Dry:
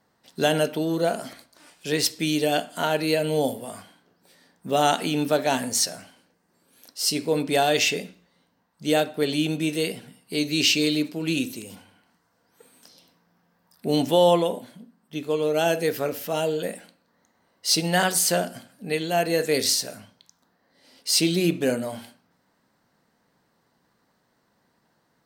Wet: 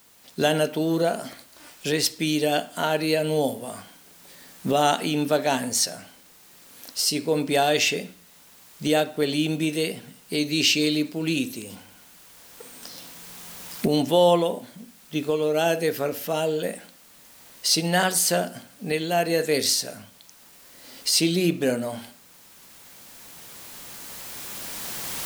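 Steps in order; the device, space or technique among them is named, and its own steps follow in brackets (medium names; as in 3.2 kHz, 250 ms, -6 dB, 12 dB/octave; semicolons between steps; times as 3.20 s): cheap recorder with automatic gain (white noise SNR 30 dB; recorder AGC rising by 7.1 dB/s)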